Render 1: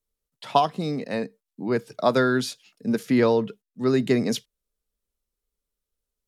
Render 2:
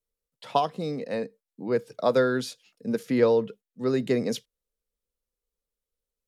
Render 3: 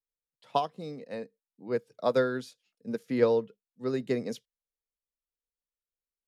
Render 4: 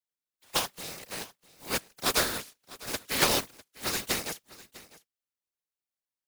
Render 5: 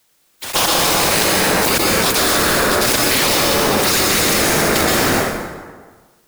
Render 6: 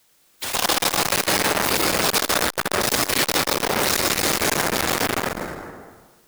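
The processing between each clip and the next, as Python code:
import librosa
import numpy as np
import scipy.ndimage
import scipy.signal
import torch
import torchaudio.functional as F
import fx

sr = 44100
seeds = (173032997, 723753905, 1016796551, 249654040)

y1 = fx.peak_eq(x, sr, hz=500.0, db=9.5, octaves=0.28)
y1 = y1 * 10.0 ** (-5.0 / 20.0)
y2 = fx.upward_expand(y1, sr, threshold_db=-41.0, expansion=1.5)
y2 = y2 * 10.0 ** (-2.0 / 20.0)
y3 = fx.spec_flatten(y2, sr, power=0.23)
y3 = fx.whisperise(y3, sr, seeds[0])
y3 = y3 + 10.0 ** (-19.5 / 20.0) * np.pad(y3, (int(651 * sr / 1000.0), 0))[:len(y3)]
y3 = y3 * 10.0 ** (-1.0 / 20.0)
y4 = fx.leveller(y3, sr, passes=3)
y4 = fx.rev_plate(y4, sr, seeds[1], rt60_s=1.5, hf_ratio=0.6, predelay_ms=110, drr_db=1.0)
y4 = fx.env_flatten(y4, sr, amount_pct=100)
y4 = y4 * 10.0 ** (-1.5 / 20.0)
y5 = fx.transformer_sat(y4, sr, knee_hz=2500.0)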